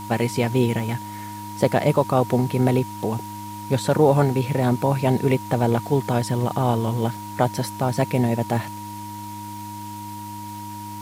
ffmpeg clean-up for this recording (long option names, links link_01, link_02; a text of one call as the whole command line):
ffmpeg -i in.wav -af "adeclick=threshold=4,bandreject=frequency=103.6:width_type=h:width=4,bandreject=frequency=207.2:width_type=h:width=4,bandreject=frequency=310.8:width_type=h:width=4,bandreject=frequency=950:width=30,afwtdn=0.0063" out.wav